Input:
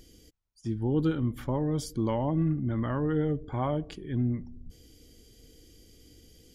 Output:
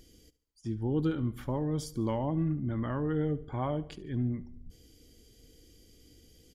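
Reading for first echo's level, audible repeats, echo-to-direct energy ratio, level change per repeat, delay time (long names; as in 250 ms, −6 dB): −19.0 dB, 3, −18.0 dB, −6.5 dB, 72 ms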